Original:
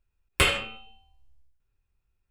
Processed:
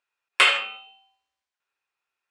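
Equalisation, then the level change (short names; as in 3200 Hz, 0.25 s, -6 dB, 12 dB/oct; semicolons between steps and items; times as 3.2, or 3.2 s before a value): polynomial smoothing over 9 samples; HPF 910 Hz 12 dB/oct; high shelf 5000 Hz -9.5 dB; +8.0 dB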